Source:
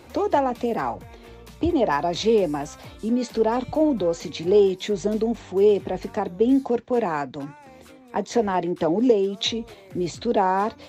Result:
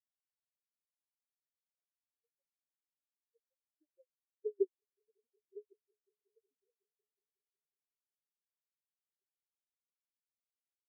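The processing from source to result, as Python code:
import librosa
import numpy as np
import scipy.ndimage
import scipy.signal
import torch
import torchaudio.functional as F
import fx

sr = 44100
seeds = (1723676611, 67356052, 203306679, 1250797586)

y = fx.doppler_pass(x, sr, speed_mps=5, closest_m=2.6, pass_at_s=4.7)
y = fx.transient(y, sr, attack_db=-4, sustain_db=6)
y = fx.filter_lfo_bandpass(y, sr, shape='saw_up', hz=6.3, low_hz=320.0, high_hz=3700.0, q=4.0)
y = fx.echo_swell(y, sr, ms=183, loudest=5, wet_db=-13.5)
y = fx.spectral_expand(y, sr, expansion=4.0)
y = F.gain(torch.from_numpy(y), -6.5).numpy()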